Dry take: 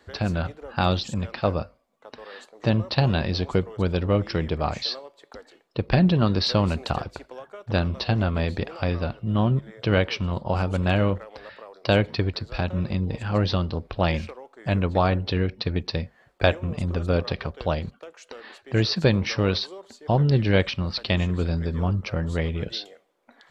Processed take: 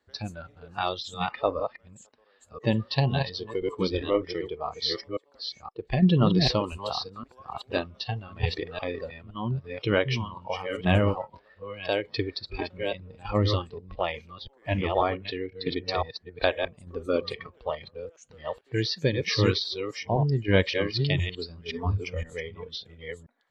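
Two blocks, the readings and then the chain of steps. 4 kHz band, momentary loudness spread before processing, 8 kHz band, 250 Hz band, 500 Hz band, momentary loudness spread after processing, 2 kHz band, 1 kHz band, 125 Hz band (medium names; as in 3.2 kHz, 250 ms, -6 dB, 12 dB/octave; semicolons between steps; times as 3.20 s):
-1.5 dB, 14 LU, no reading, -4.0 dB, -2.0 dB, 15 LU, -2.5 dB, -2.5 dB, -5.5 dB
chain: chunks repeated in reverse 517 ms, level -4 dB; tremolo saw down 0.83 Hz, depth 50%; spectral noise reduction 17 dB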